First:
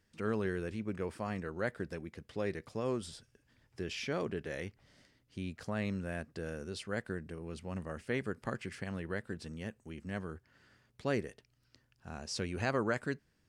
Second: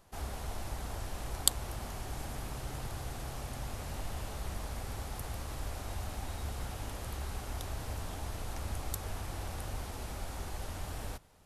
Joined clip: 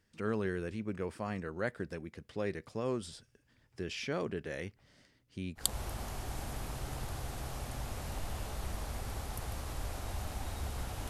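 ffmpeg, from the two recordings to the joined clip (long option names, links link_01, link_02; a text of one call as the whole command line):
ffmpeg -i cue0.wav -i cue1.wav -filter_complex "[0:a]apad=whole_dur=11.09,atrim=end=11.09,atrim=end=5.75,asetpts=PTS-STARTPTS[link_01];[1:a]atrim=start=1.37:end=6.91,asetpts=PTS-STARTPTS[link_02];[link_01][link_02]acrossfade=duration=0.2:curve1=tri:curve2=tri" out.wav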